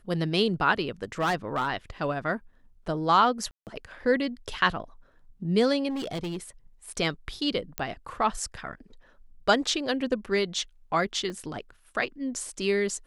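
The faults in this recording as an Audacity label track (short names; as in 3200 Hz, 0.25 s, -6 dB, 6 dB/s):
1.200000	1.680000	clipped -21.5 dBFS
3.510000	3.670000	gap 0.158 s
5.890000	6.380000	clipped -28.5 dBFS
7.780000	7.780000	pop -11 dBFS
11.300000	11.300000	gap 2 ms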